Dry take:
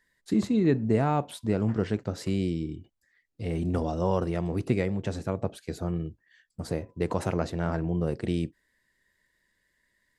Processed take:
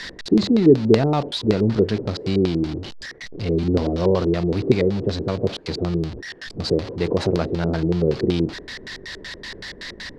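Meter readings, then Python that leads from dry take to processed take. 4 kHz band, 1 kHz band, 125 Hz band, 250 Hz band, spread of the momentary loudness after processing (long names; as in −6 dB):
+15.5 dB, +3.0 dB, +6.0 dB, +8.0 dB, 17 LU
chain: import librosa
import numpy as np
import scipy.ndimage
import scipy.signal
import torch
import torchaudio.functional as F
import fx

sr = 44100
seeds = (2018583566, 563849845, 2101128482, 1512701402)

y = x + 0.5 * 10.0 ** (-33.5 / 20.0) * np.sign(x)
y = fx.filter_lfo_lowpass(y, sr, shape='square', hz=5.3, low_hz=410.0, high_hz=4400.0, q=3.2)
y = F.gain(torch.from_numpy(y), 4.0).numpy()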